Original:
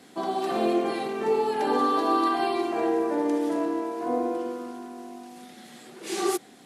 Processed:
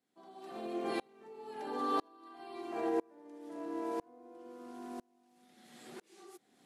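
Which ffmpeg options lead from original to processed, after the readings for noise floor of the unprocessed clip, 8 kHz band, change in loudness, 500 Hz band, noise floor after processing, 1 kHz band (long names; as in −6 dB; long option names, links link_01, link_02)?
−51 dBFS, −20.0 dB, −13.5 dB, −14.5 dB, −73 dBFS, −14.5 dB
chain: -af "alimiter=limit=-19.5dB:level=0:latency=1:release=294,aeval=exprs='val(0)*pow(10,-33*if(lt(mod(-1*n/s,1),2*abs(-1)/1000),1-mod(-1*n/s,1)/(2*abs(-1)/1000),(mod(-1*n/s,1)-2*abs(-1)/1000)/(1-2*abs(-1)/1000))/20)':channel_layout=same,volume=-1.5dB"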